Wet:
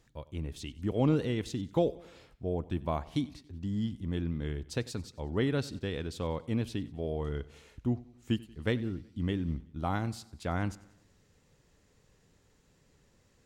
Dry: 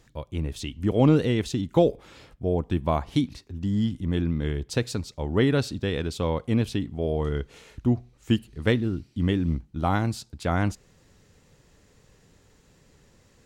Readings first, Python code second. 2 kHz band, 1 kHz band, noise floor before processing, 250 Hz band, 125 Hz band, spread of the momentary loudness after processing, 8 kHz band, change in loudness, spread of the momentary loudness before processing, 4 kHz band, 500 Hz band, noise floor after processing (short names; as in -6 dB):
-8.0 dB, -8.0 dB, -60 dBFS, -8.0 dB, -8.0 dB, 10 LU, -8.0 dB, -8.0 dB, 10 LU, -8.0 dB, -8.0 dB, -67 dBFS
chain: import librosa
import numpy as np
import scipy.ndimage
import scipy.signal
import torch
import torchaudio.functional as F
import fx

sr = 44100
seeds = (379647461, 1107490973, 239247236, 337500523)

y = fx.echo_feedback(x, sr, ms=93, feedback_pct=51, wet_db=-20.5)
y = y * 10.0 ** (-8.0 / 20.0)